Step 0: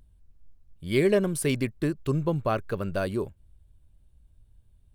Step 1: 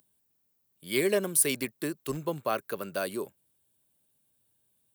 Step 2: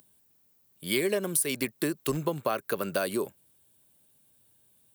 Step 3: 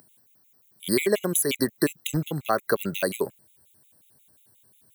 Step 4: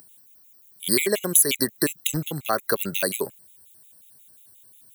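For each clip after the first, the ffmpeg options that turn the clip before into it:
-filter_complex "[0:a]aemphasis=mode=production:type=bsi,acrossover=split=120|530|3700[a][b][c][d];[a]acrusher=bits=4:dc=4:mix=0:aa=0.000001[e];[e][b][c][d]amix=inputs=4:normalize=0,volume=-2dB"
-af "acompressor=threshold=-33dB:ratio=5,volume=8dB"
-af "afftfilt=real='re*gt(sin(2*PI*5.6*pts/sr)*(1-2*mod(floor(b*sr/1024/2000),2)),0)':imag='im*gt(sin(2*PI*5.6*pts/sr)*(1-2*mod(floor(b*sr/1024/2000),2)),0)':win_size=1024:overlap=0.75,volume=7.5dB"
-af "highshelf=f=2.6k:g=9.5,volume=-1.5dB"

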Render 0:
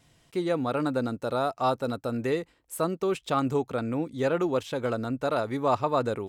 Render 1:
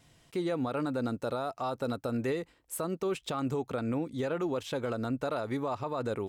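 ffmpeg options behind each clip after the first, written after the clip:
-af "alimiter=limit=-24dB:level=0:latency=1:release=108"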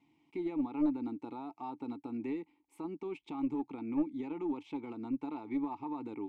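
-filter_complex "[0:a]asplit=3[a][b][c];[a]bandpass=f=300:t=q:w=8,volume=0dB[d];[b]bandpass=f=870:t=q:w=8,volume=-6dB[e];[c]bandpass=f=2.24k:t=q:w=8,volume=-9dB[f];[d][e][f]amix=inputs=3:normalize=0,aeval=exprs='0.0422*(cos(1*acos(clip(val(0)/0.0422,-1,1)))-cos(1*PI/2))+0.00944*(cos(2*acos(clip(val(0)/0.0422,-1,1)))-cos(2*PI/2))+0.00211*(cos(4*acos(clip(val(0)/0.0422,-1,1)))-cos(4*PI/2))':c=same,volume=5.5dB"

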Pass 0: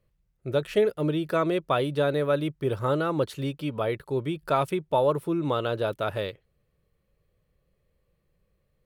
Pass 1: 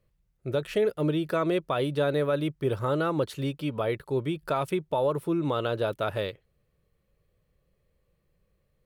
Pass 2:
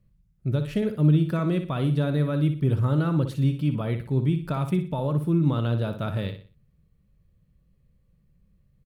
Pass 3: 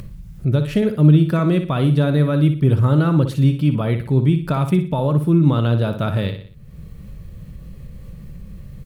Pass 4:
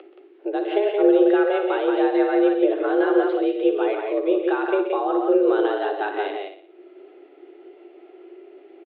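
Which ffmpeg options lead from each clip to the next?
-af "alimiter=limit=-17dB:level=0:latency=1:release=93"
-filter_complex "[0:a]lowshelf=f=300:t=q:w=1.5:g=11.5,asplit=2[a][b];[b]aecho=0:1:60|120|180|240:0.355|0.124|0.0435|0.0152[c];[a][c]amix=inputs=2:normalize=0,volume=-3.5dB"
-af "acompressor=mode=upward:threshold=-25dB:ratio=2.5,volume=7.5dB"
-filter_complex "[0:a]asplit=2[a][b];[b]adelay=13,volume=-12dB[c];[a][c]amix=inputs=2:normalize=0,aecho=1:1:128.3|174.9:0.316|0.631,highpass=f=160:t=q:w=0.5412,highpass=f=160:t=q:w=1.307,lowpass=f=3.1k:t=q:w=0.5176,lowpass=f=3.1k:t=q:w=0.7071,lowpass=f=3.1k:t=q:w=1.932,afreqshift=200,volume=-3.5dB"

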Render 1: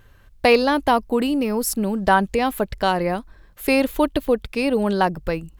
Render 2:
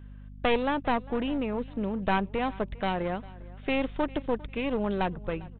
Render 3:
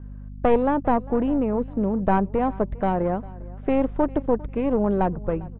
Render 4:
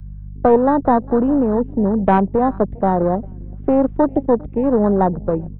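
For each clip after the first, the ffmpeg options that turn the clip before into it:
-af "aresample=8000,aeval=exprs='clip(val(0),-1,0.0668)':c=same,aresample=44100,aeval=exprs='val(0)+0.0158*(sin(2*PI*50*n/s)+sin(2*PI*2*50*n/s)/2+sin(2*PI*3*50*n/s)/3+sin(2*PI*4*50*n/s)/4+sin(2*PI*5*50*n/s)/5)':c=same,aecho=1:1:401|802:0.0841|0.0269,volume=-7.5dB"
-af "lowpass=1k,volume=7.5dB"
-filter_complex "[0:a]afwtdn=0.0316,acrossover=split=100|460|1200[a][b][c][d];[a]acompressor=threshold=-37dB:ratio=6[e];[e][b][c][d]amix=inputs=4:normalize=0,volume=6.5dB"

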